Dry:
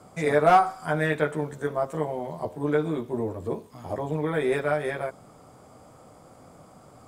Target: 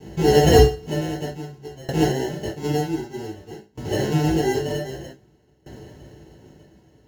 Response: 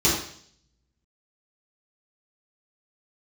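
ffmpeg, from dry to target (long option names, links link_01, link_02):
-filter_complex "[0:a]acrusher=samples=37:mix=1:aa=0.000001[link_01];[1:a]atrim=start_sample=2205,atrim=end_sample=3528[link_02];[link_01][link_02]afir=irnorm=-1:irlink=0,aeval=exprs='val(0)*pow(10,-23*if(lt(mod(0.53*n/s,1),2*abs(0.53)/1000),1-mod(0.53*n/s,1)/(2*abs(0.53)/1000),(mod(0.53*n/s,1)-2*abs(0.53)/1000)/(1-2*abs(0.53)/1000))/20)':channel_layout=same,volume=-7.5dB"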